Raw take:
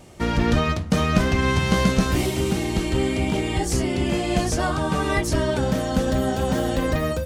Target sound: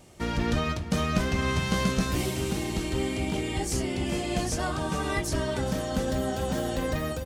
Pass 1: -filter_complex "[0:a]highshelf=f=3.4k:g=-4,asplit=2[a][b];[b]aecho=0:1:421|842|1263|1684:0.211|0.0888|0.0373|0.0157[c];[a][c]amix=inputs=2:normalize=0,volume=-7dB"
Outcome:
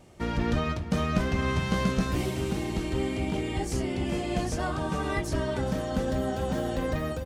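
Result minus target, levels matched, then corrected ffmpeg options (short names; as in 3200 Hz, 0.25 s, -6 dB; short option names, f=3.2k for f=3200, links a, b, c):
8000 Hz band -6.0 dB
-filter_complex "[0:a]highshelf=f=3.4k:g=4,asplit=2[a][b];[b]aecho=0:1:421|842|1263|1684:0.211|0.0888|0.0373|0.0157[c];[a][c]amix=inputs=2:normalize=0,volume=-7dB"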